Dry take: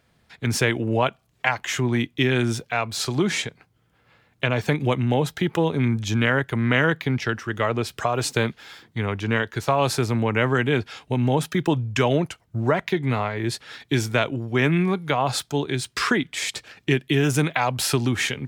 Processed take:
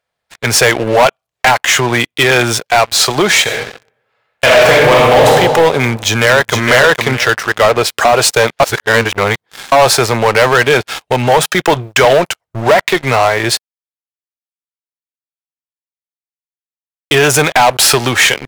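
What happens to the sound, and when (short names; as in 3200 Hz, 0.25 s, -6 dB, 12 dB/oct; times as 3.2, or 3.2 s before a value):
3.42–5.28 reverb throw, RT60 1.3 s, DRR -3.5 dB
5.83–6.67 echo throw 0.46 s, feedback 20%, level -6 dB
8.6–9.72 reverse
13.59–17.11 mute
whole clip: resonant low shelf 390 Hz -11.5 dB, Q 1.5; sample leveller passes 5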